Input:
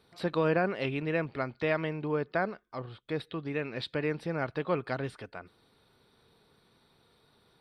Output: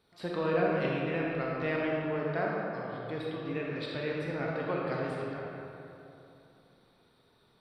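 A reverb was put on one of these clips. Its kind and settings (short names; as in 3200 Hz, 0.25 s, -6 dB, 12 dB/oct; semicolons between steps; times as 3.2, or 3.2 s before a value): digital reverb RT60 3 s, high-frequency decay 0.55×, pre-delay 0 ms, DRR -4 dB; gain -6 dB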